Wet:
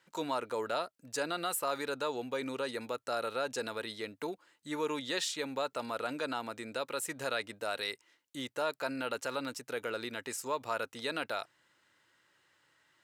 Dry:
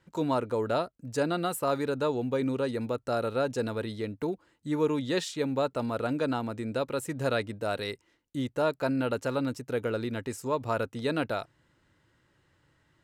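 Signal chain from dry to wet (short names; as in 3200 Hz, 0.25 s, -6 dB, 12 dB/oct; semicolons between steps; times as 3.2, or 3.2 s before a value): HPF 1300 Hz 6 dB/oct; in parallel at +3 dB: limiter -29 dBFS, peak gain reduction 10.5 dB; on the sum: gain -4 dB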